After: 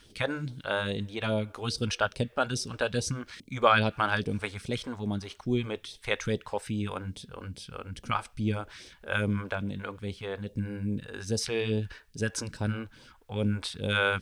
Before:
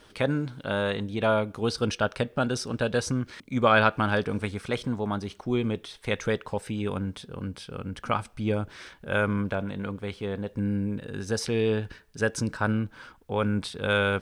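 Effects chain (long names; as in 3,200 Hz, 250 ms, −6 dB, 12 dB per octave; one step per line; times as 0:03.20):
all-pass phaser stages 2, 2.4 Hz, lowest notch 130–1,400 Hz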